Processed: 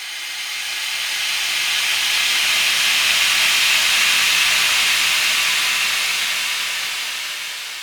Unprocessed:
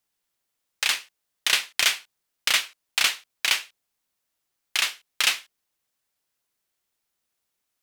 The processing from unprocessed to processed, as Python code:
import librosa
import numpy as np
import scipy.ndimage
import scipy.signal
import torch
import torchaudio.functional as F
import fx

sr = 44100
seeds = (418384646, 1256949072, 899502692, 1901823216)

y = fx.rattle_buzz(x, sr, strikes_db=-50.0, level_db=-15.0)
y = fx.paulstretch(y, sr, seeds[0], factor=32.0, window_s=0.25, from_s=4.69)
y = y * 10.0 ** (6.5 / 20.0)